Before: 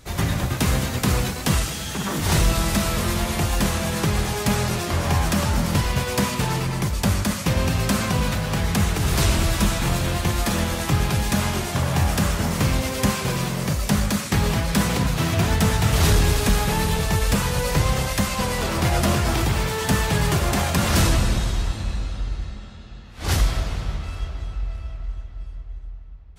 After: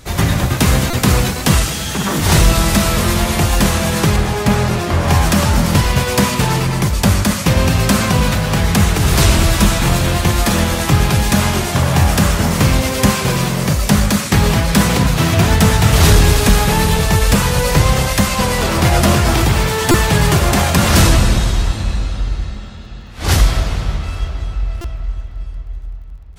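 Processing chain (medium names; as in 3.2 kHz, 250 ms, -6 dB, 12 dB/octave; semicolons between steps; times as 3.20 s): 4.16–5.08 s: treble shelf 3.4 kHz -8 dB; crackle 40 per s -50 dBFS; buffer glitch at 0.90/19.91/24.81 s, samples 128, times 10; trim +8 dB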